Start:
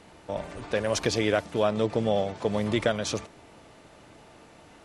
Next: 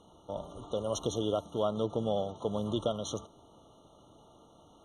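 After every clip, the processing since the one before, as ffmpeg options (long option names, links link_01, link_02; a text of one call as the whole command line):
ffmpeg -i in.wav -af "afftfilt=real='re*eq(mod(floor(b*sr/1024/1400),2),0)':imag='im*eq(mod(floor(b*sr/1024/1400),2),0)':win_size=1024:overlap=0.75,volume=-6dB" out.wav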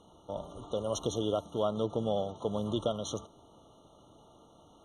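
ffmpeg -i in.wav -af anull out.wav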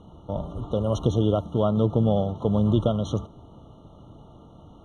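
ffmpeg -i in.wav -af "bass=frequency=250:gain=12,treble=frequency=4000:gain=-13,volume=5.5dB" out.wav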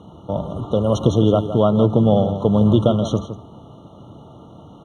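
ffmpeg -i in.wav -filter_complex "[0:a]highpass=96,asplit=2[link_01][link_02];[link_02]adelay=163.3,volume=-11dB,highshelf=frequency=4000:gain=-3.67[link_03];[link_01][link_03]amix=inputs=2:normalize=0,volume=7dB" out.wav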